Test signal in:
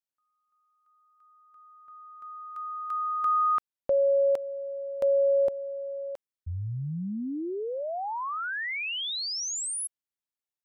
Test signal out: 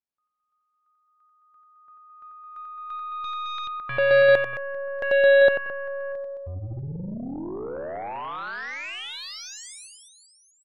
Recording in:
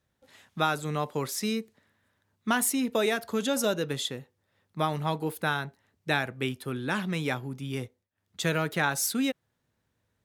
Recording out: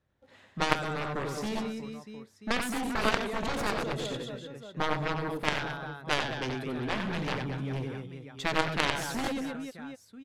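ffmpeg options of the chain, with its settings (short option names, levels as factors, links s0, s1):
-af "aemphasis=mode=reproduction:type=75fm,aecho=1:1:90|216|392.4|639.4|985.1:0.631|0.398|0.251|0.158|0.1,aeval=exprs='0.266*(cos(1*acos(clip(val(0)/0.266,-1,1)))-cos(1*PI/2))+0.119*(cos(3*acos(clip(val(0)/0.266,-1,1)))-cos(3*PI/2))+0.0211*(cos(5*acos(clip(val(0)/0.266,-1,1)))-cos(5*PI/2))+0.00596*(cos(6*acos(clip(val(0)/0.266,-1,1)))-cos(6*PI/2))+0.0237*(cos(7*acos(clip(val(0)/0.266,-1,1)))-cos(7*PI/2))':c=same,volume=1.68"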